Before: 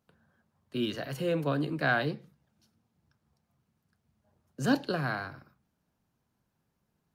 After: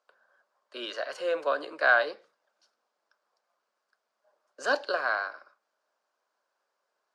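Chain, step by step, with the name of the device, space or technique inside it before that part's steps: phone speaker on a table (cabinet simulation 450–8400 Hz, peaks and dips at 590 Hz +8 dB, 1.1 kHz +7 dB, 1.5 kHz +7 dB, 4.8 kHz +5 dB)

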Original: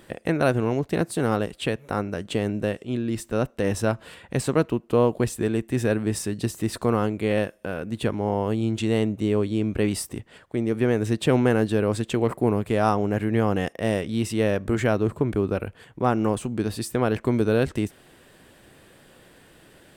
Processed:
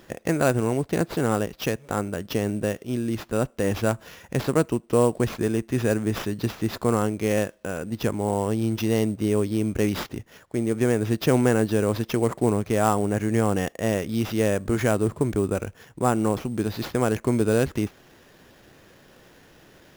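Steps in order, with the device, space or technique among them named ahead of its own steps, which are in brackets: early companding sampler (sample-rate reducer 8.6 kHz, jitter 0%; companded quantiser 8-bit)

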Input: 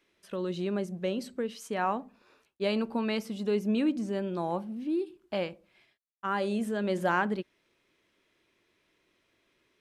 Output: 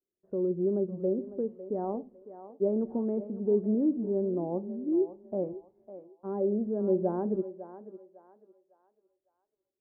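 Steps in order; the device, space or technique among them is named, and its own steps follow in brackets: gate with hold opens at -58 dBFS; under water (low-pass 650 Hz 24 dB/octave; peaking EQ 380 Hz +7.5 dB 0.22 oct); peaking EQ 1.9 kHz +3 dB 0.25 oct; thinning echo 553 ms, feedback 40%, high-pass 590 Hz, level -10 dB

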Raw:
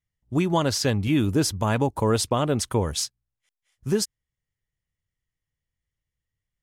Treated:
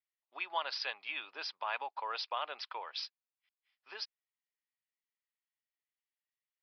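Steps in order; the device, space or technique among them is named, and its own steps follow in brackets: musical greeting card (resampled via 11.025 kHz; high-pass 780 Hz 24 dB/octave; peaking EQ 2.5 kHz +6.5 dB 0.21 oct); trim -8 dB

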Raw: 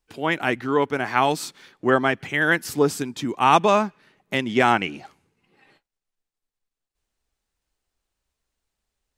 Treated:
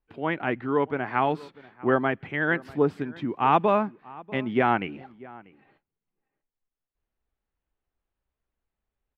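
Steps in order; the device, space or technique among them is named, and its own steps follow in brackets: shout across a valley (distance through air 490 m; echo from a far wall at 110 m, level -21 dB); trim -2 dB

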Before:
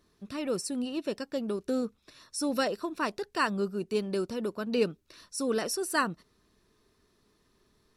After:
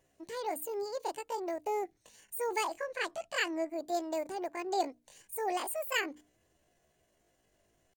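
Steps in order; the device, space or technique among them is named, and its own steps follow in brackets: 2.78–3.71 s: low-pass 6.1 kHz 12 dB/octave; chipmunk voice (pitch shift +8.5 st); hum notches 60/120/180/240/300 Hz; trim -4 dB

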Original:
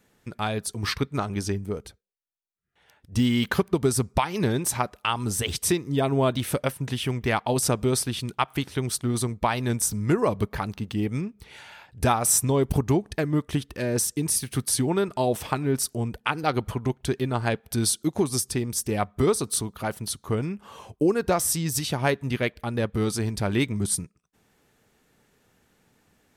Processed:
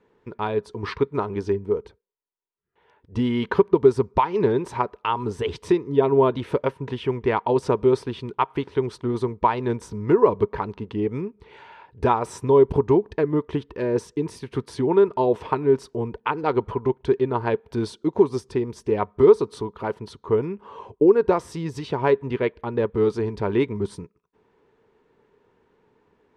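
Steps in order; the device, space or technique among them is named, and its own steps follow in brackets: inside a cardboard box (low-pass 3 kHz 12 dB/octave; small resonant body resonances 420/950 Hz, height 14 dB, ringing for 25 ms); trim -3.5 dB

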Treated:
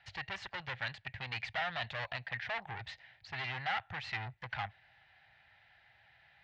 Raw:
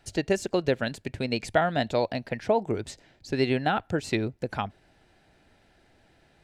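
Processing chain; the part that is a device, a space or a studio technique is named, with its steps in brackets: scooped metal amplifier (valve stage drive 33 dB, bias 0.65; cabinet simulation 92–3500 Hz, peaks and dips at 120 Hz +5 dB, 220 Hz -3 dB, 440 Hz -7 dB, 800 Hz +7 dB, 1.9 kHz +8 dB; amplifier tone stack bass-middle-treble 10-0-10); trim +7 dB

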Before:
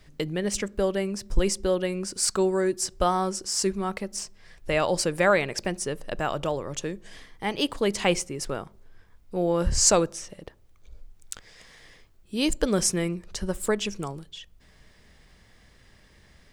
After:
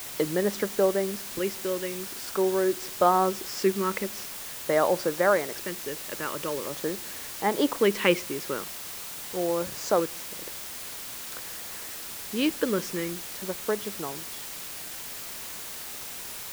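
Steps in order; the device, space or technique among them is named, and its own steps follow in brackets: shortwave radio (band-pass 260–2600 Hz; tremolo 0.26 Hz, depth 58%; LFO notch square 0.45 Hz 720–2600 Hz; white noise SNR 9 dB); trim +5.5 dB

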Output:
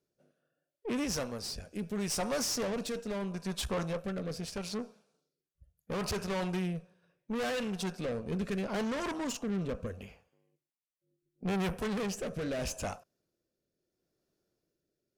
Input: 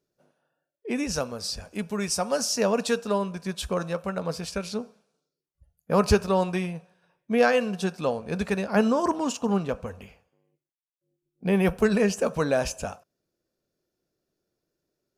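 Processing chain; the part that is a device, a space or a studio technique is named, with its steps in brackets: overdriven rotary cabinet (valve stage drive 31 dB, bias 0.55; rotary cabinet horn 0.75 Hz); trim +2 dB

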